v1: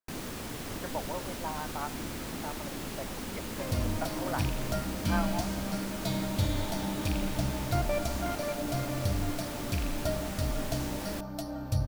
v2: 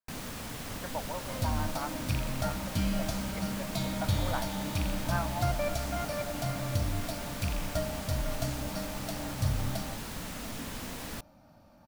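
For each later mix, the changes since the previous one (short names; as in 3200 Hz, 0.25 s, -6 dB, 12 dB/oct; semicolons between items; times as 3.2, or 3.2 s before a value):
second sound: entry -2.30 s; master: add bell 360 Hz -8 dB 0.61 oct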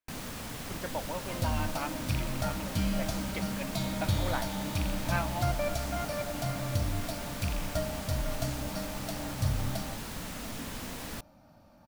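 speech: remove Butterworth band-pass 920 Hz, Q 0.83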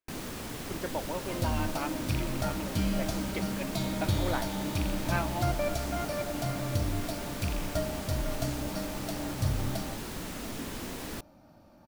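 master: add bell 360 Hz +8 dB 0.61 oct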